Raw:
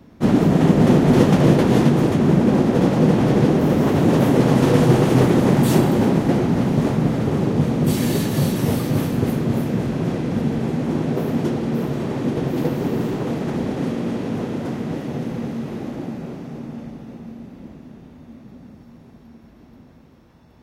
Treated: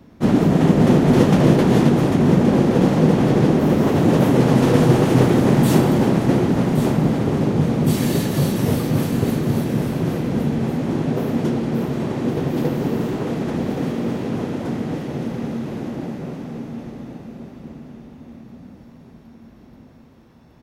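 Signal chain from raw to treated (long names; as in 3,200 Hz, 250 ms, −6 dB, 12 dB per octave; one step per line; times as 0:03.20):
single-tap delay 1,121 ms −9.5 dB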